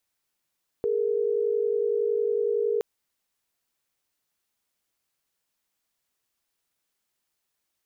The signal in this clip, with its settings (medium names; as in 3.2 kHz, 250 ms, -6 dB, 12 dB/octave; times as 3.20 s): chord G#4/A#4 sine, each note -25 dBFS 1.97 s